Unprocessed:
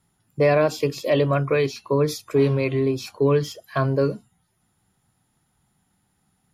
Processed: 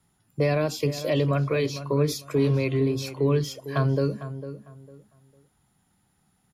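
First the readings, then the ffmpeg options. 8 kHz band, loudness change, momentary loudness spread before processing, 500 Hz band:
0.0 dB, -3.5 dB, 6 LU, -5.0 dB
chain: -filter_complex "[0:a]acrossover=split=280|3000[a][b][c];[b]acompressor=threshold=-30dB:ratio=2[d];[a][d][c]amix=inputs=3:normalize=0,asplit=2[e][f];[f]adelay=452,lowpass=f=1.8k:p=1,volume=-12dB,asplit=2[g][h];[h]adelay=452,lowpass=f=1.8k:p=1,volume=0.26,asplit=2[i][j];[j]adelay=452,lowpass=f=1.8k:p=1,volume=0.26[k];[g][i][k]amix=inputs=3:normalize=0[l];[e][l]amix=inputs=2:normalize=0"

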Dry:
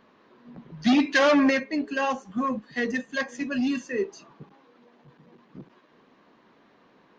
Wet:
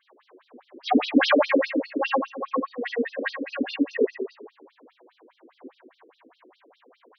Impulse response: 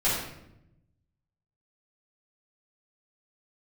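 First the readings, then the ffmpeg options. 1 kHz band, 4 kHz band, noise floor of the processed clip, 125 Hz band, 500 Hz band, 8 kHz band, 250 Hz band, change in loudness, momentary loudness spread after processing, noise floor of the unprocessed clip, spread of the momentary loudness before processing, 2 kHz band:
+1.5 dB, +1.5 dB, -68 dBFS, under -10 dB, +2.5 dB, n/a, -1.0 dB, 0.0 dB, 11 LU, -60 dBFS, 11 LU, -1.0 dB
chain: -filter_complex "[0:a]tremolo=f=170:d=0.4[a];[1:a]atrim=start_sample=2205[b];[a][b]afir=irnorm=-1:irlink=0,afftfilt=real='re*between(b*sr/1024,340*pow(4400/340,0.5+0.5*sin(2*PI*4.9*pts/sr))/1.41,340*pow(4400/340,0.5+0.5*sin(2*PI*4.9*pts/sr))*1.41)':imag='im*between(b*sr/1024,340*pow(4400/340,0.5+0.5*sin(2*PI*4.9*pts/sr))/1.41,340*pow(4400/340,0.5+0.5*sin(2*PI*4.9*pts/sr))*1.41)':win_size=1024:overlap=0.75,volume=-1.5dB"

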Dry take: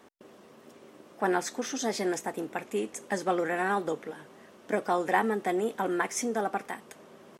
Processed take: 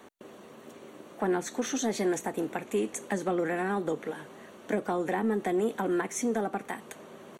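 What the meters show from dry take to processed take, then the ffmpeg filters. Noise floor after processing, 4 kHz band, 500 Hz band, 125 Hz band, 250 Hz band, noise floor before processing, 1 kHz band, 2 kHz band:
-51 dBFS, -2.5 dB, +0.5 dB, +3.5 dB, +2.5 dB, -55 dBFS, -4.0 dB, -3.5 dB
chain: -filter_complex "[0:a]acrossover=split=380[a][b];[b]acompressor=threshold=-35dB:ratio=6[c];[a][c]amix=inputs=2:normalize=0,asplit=2[d][e];[e]asoftclip=type=hard:threshold=-29.5dB,volume=-10.5dB[f];[d][f]amix=inputs=2:normalize=0,asuperstop=centerf=5100:order=4:qfactor=6.3,volume=2dB"

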